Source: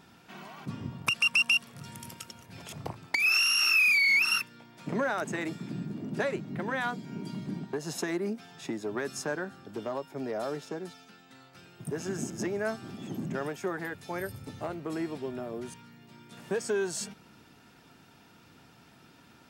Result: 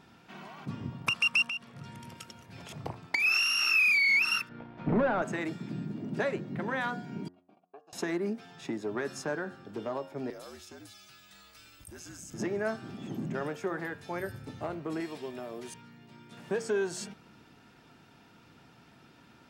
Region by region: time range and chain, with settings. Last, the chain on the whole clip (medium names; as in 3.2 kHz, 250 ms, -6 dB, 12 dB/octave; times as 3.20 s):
1.47–2.15 s: treble shelf 6 kHz -9.5 dB + compression 2.5:1, threshold -35 dBFS
4.49–5.22 s: waveshaping leveller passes 3 + tape spacing loss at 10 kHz 44 dB
7.28–7.93 s: gate -36 dBFS, range -28 dB + vowel filter a + bass shelf 280 Hz -6 dB
10.30–12.34 s: pre-emphasis filter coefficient 0.9 + frequency shift -68 Hz + level flattener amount 50%
15.00–15.74 s: tilt EQ +2.5 dB/octave + band-stop 1.4 kHz, Q 24
whole clip: treble shelf 6.3 kHz -9 dB; de-hum 90.23 Hz, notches 21